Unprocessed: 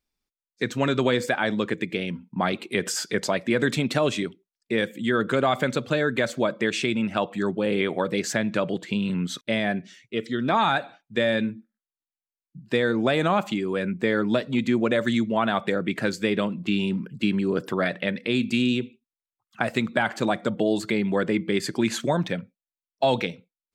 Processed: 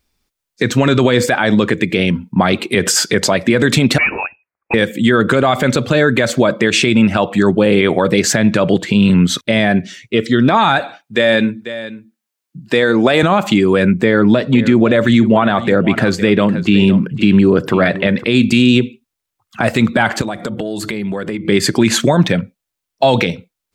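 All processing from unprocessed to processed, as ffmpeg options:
ffmpeg -i in.wav -filter_complex "[0:a]asettb=1/sr,asplit=3[link_01][link_02][link_03];[link_01]atrim=end=3.984[link_04];[link_02]atrim=start=3.98:end=4.74,asetpts=PTS-STARTPTS,afade=type=in:duration=0.004:curve=qsin,afade=type=out:start_time=0.756:duration=0.004:curve=qsin,highpass=620,volume=25dB,asoftclip=hard,volume=-25dB,lowpass=frequency=2500:width_type=q:width=0.5098,lowpass=frequency=2500:width_type=q:width=0.6013,lowpass=frequency=2500:width_type=q:width=0.9,lowpass=frequency=2500:width_type=q:width=2.563,afreqshift=-2900[link_05];[link_03]atrim=start=4.736[link_06];[link_04][link_05]acrossfade=duration=0.004:curve1=hsin:curve2=qsin[link_07];[link_07][link_06]acrossfade=duration=0.004:curve1=qsin:curve2=hsin,asettb=1/sr,asplit=3[link_08][link_09][link_10];[link_08]atrim=end=10.794[link_11];[link_09]atrim=start=10.79:end=13.23,asetpts=PTS-STARTPTS,afade=type=in:duration=0.004:curve=qsin,afade=type=out:start_time=2.436:duration=0.004:curve=qsin,highpass=frequency=290:poles=1,aecho=1:1:491:0.15,atrim=end_sample=107604[link_12];[link_10]atrim=start=13.226[link_13];[link_11][link_12]acrossfade=duration=0.004:curve1=hsin:curve2=qsin[link_14];[link_14][link_13]acrossfade=duration=0.004:curve1=qsin:curve2=hsin,asettb=1/sr,asplit=3[link_15][link_16][link_17];[link_15]atrim=end=14.044[link_18];[link_16]atrim=start=14.04:end=18.24,asetpts=PTS-STARTPTS,afade=type=in:duration=0.004:curve=qsin,afade=type=out:start_time=4.196:duration=0.004:curve=qsin,highshelf=frequency=4500:gain=-8,aecho=1:1:509:0.15,atrim=end_sample=185220[link_19];[link_17]atrim=start=18.236[link_20];[link_18][link_19]acrossfade=duration=0.004:curve1=hsin:curve2=qsin[link_21];[link_21][link_20]acrossfade=duration=0.004:curve1=qsin:curve2=hsin,asettb=1/sr,asplit=3[link_22][link_23][link_24];[link_22]atrim=end=20.214[link_25];[link_23]atrim=start=20.21:end=21.45,asetpts=PTS-STARTPTS,afade=type=in:duration=0.004:curve=qsin,afade=type=out:start_time=1.236:duration=0.004:curve=qsin,equalizer=frequency=11000:width=2:gain=8.5,bandreject=frequency=60:width_type=h:width=6,bandreject=frequency=120:width_type=h:width=6,bandreject=frequency=180:width_type=h:width=6,bandreject=frequency=240:width_type=h:width=6,bandreject=frequency=300:width_type=h:width=6,bandreject=frequency=360:width_type=h:width=6,acompressor=threshold=-34dB:ratio=6:attack=3.2:release=140:knee=1:detection=peak[link_26];[link_24]atrim=start=21.446[link_27];[link_25][link_26]acrossfade=duration=0.004:curve1=hsin:curve2=qsin[link_28];[link_28][link_27]acrossfade=duration=0.004:curve1=qsin:curve2=hsin,equalizer=frequency=84:width_type=o:width=0.78:gain=8,alimiter=level_in=16dB:limit=-1dB:release=50:level=0:latency=1,volume=-1dB" out.wav

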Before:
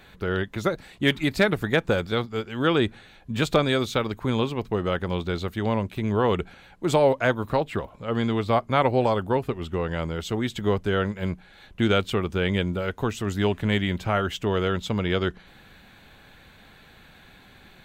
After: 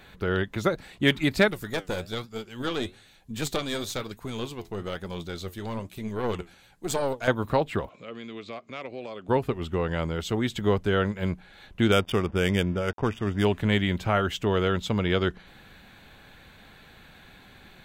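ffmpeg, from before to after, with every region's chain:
ffmpeg -i in.wav -filter_complex "[0:a]asettb=1/sr,asplit=3[link_01][link_02][link_03];[link_01]atrim=end=1.484[link_04];[link_02]atrim=start=1.48:end=7.28,asetpts=PTS-STARTPTS,afade=type=in:duration=0.004:curve=qsin,afade=type=out:start_time=5.796:duration=0.004:curve=qsin,bass=frequency=250:gain=1,treble=frequency=4000:gain=13,flanger=delay=4:depth=8.2:regen=72:speed=1.1:shape=triangular,aeval=exprs='(tanh(7.94*val(0)+0.7)-tanh(0.7))/7.94':channel_layout=same[link_05];[link_03]atrim=start=7.276[link_06];[link_04][link_05]acrossfade=duration=0.004:curve1=hsin:curve2=qsin[link_07];[link_07][link_06]acrossfade=duration=0.004:curve1=qsin:curve2=hsin,asettb=1/sr,asplit=3[link_08][link_09][link_10];[link_08]atrim=end=7.894[link_11];[link_09]atrim=start=7.89:end=9.29,asetpts=PTS-STARTPTS,afade=type=in:duration=0.004:curve=qsin,afade=type=out:start_time=1.396:duration=0.004:curve=qsin,asoftclip=type=hard:threshold=-12dB,acompressor=threshold=-39dB:ratio=2.5:attack=3.2:release=140:knee=1:detection=peak,highpass=220,equalizer=frequency=870:width_type=q:width=4:gain=-10,equalizer=frequency=1500:width_type=q:width=4:gain=-3,equalizer=frequency=2400:width_type=q:width=4:gain=8,equalizer=frequency=3800:width_type=q:width=4:gain=4,equalizer=frequency=6700:width_type=q:width=4:gain=4,lowpass=frequency=7700:width=0.5412,lowpass=frequency=7700:width=1.3066[link_12];[link_10]atrim=start=9.286[link_13];[link_11][link_12]acrossfade=duration=0.004:curve1=hsin:curve2=qsin[link_14];[link_14][link_13]acrossfade=duration=0.004:curve1=qsin:curve2=hsin,asettb=1/sr,asplit=3[link_15][link_16][link_17];[link_15]atrim=end=11.924[link_18];[link_16]atrim=start=11.92:end=13.45,asetpts=PTS-STARTPTS,afade=type=in:duration=0.004:curve=qsin,afade=type=out:start_time=1.526:duration=0.004:curve=qsin,aeval=exprs='val(0)*gte(abs(val(0)),0.0075)':channel_layout=same,adynamicsmooth=sensitivity=6.5:basefreq=1000,asuperstop=centerf=4100:order=20:qfactor=5.5[link_19];[link_17]atrim=start=13.446[link_20];[link_18][link_19]acrossfade=duration=0.004:curve1=hsin:curve2=qsin[link_21];[link_21][link_20]acrossfade=duration=0.004:curve1=qsin:curve2=hsin" out.wav

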